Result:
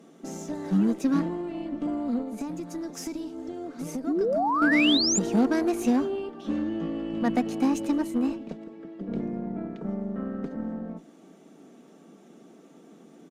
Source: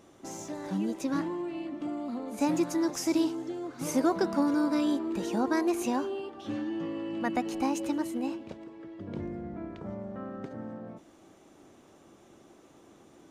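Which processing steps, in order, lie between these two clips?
elliptic high-pass 160 Hz; bass shelf 330 Hz +11 dB; band-stop 1 kHz, Q 8.3; comb 4.4 ms, depth 36%; 2.21–4.62 s: compression 6:1, threshold -32 dBFS, peak gain reduction 15.5 dB; Chebyshev shaper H 8 -27 dB, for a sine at -14 dBFS; 4.07–5.19 s: painted sound rise 260–7500 Hz -25 dBFS

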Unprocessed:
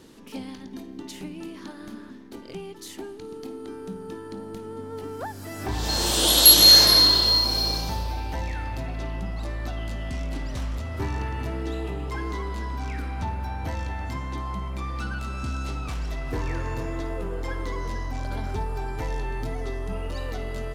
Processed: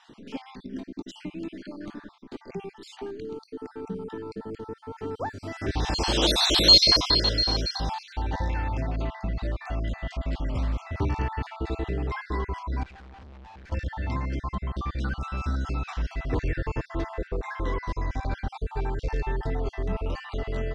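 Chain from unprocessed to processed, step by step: random holes in the spectrogram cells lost 43%; 12.83–13.72 s: valve stage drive 48 dB, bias 0.75; distance through air 120 m; trim +3 dB

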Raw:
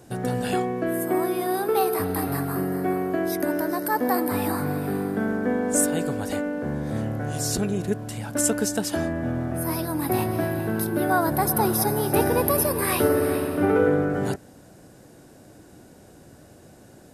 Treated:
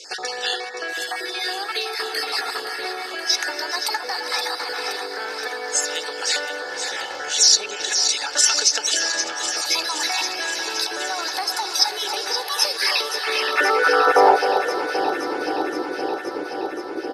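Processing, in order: random holes in the spectrogram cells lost 28%; three-band isolator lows -23 dB, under 380 Hz, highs -23 dB, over 5.5 kHz; comb 2.3 ms, depth 51%; compression, threshold -34 dBFS, peak gain reduction 16 dB; band-pass sweep 5.4 kHz -> 320 Hz, 13.05–14.89 s; echo whose repeats swap between lows and highs 261 ms, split 1 kHz, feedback 86%, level -7.5 dB; on a send at -22.5 dB: reverberation, pre-delay 4 ms; on the sum: loudness maximiser +34 dB; trim -2.5 dB

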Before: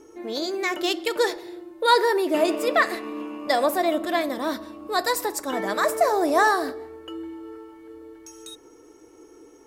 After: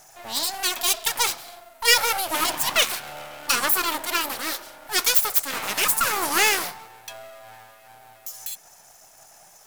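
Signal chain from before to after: full-wave rectifier; RIAA curve recording; hum notches 60/120 Hz; trim +1 dB

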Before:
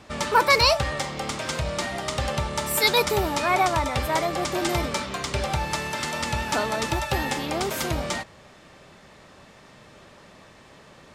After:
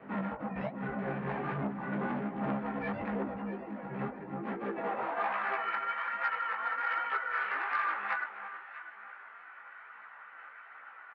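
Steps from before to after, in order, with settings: bass shelf 130 Hz +5.5 dB; peak limiter -17 dBFS, peak gain reduction 11.5 dB; mistuned SSB -380 Hz 460–2200 Hz; high-pass sweep 160 Hz -> 1.3 kHz, 4.24–5.44 s; compressor with a negative ratio -32 dBFS, ratio -0.5; harmony voices +5 st -7 dB; doubling 15 ms -5 dB; echo whose repeats swap between lows and highs 325 ms, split 1.2 kHz, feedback 52%, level -7 dB; chorus voices 2, 1.2 Hz, delay 18 ms, depth 3 ms; transformer saturation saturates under 800 Hz; trim -1.5 dB

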